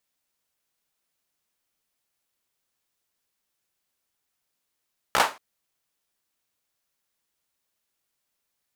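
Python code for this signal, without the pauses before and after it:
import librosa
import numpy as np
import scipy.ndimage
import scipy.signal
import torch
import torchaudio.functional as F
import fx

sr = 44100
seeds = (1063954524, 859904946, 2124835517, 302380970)

y = fx.drum_clap(sr, seeds[0], length_s=0.23, bursts=4, spacing_ms=16, hz=960.0, decay_s=0.28)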